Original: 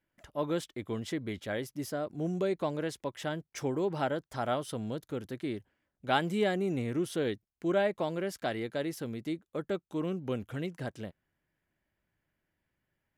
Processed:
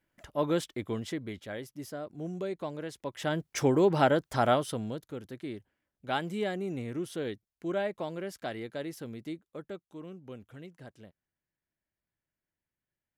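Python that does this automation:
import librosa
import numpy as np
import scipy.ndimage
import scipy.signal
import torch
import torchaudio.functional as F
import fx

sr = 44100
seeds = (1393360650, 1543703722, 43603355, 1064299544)

y = fx.gain(x, sr, db=fx.line((0.76, 3.5), (1.49, -4.5), (2.91, -4.5), (3.45, 7.5), (4.45, 7.5), (5.11, -3.5), (9.29, -3.5), (10.01, -11.0)))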